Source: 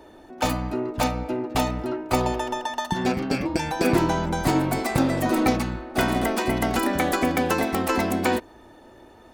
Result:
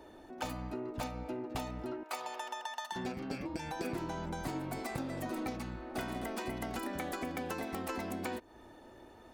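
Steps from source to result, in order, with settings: 2.03–2.96 HPF 830 Hz 12 dB/oct; compressor 4:1, threshold -31 dBFS, peak gain reduction 13.5 dB; gain -6 dB

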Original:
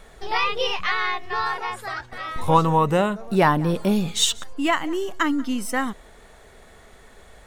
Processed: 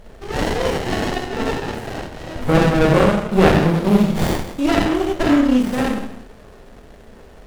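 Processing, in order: Schroeder reverb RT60 0.8 s, combs from 28 ms, DRR -2.5 dB; running maximum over 33 samples; gain +4 dB

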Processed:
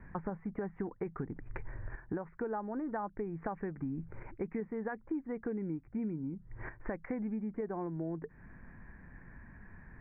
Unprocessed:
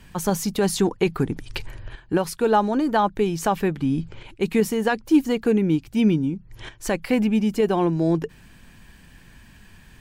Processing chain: steep low-pass 2100 Hz 72 dB/oct; compressor 6:1, threshold -32 dBFS, peak gain reduction 18.5 dB; gain -3.5 dB

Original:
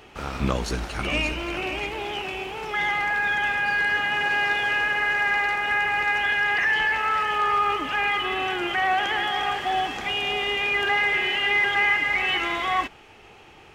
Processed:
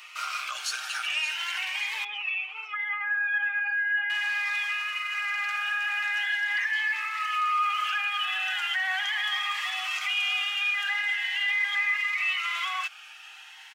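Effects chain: 2.04–4.1 spectral contrast raised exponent 1.8; compressor 1.5:1, threshold -30 dBFS, peak gain reduction 4.5 dB; HPF 1200 Hz 24 dB/oct; limiter -27 dBFS, peak gain reduction 9 dB; comb 6.5 ms, depth 52%; cascading phaser rising 0.41 Hz; gain +7 dB

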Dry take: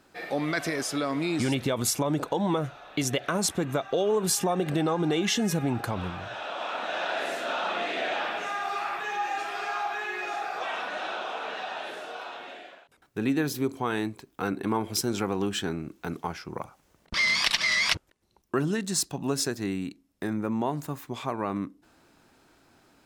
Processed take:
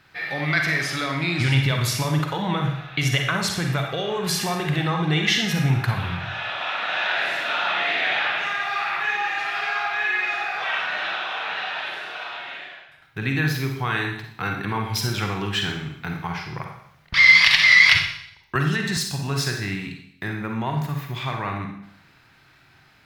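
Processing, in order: graphic EQ 125/250/500/2000/4000/8000 Hz +11/-8/-6/+9/+5/-8 dB; reverb RT60 0.70 s, pre-delay 40 ms, DRR 2.5 dB; 18.55–18.97 three-band squash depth 100%; gain +1.5 dB

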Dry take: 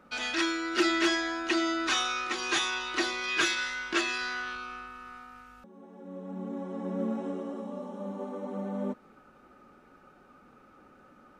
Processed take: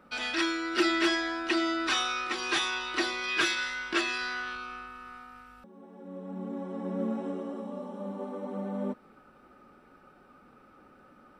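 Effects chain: notch 6600 Hz, Q 5.4

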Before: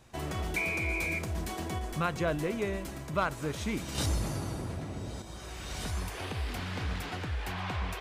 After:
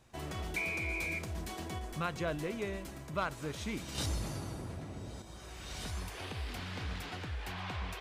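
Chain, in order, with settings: dynamic EQ 3900 Hz, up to +3 dB, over -47 dBFS, Q 0.8; gain -5.5 dB

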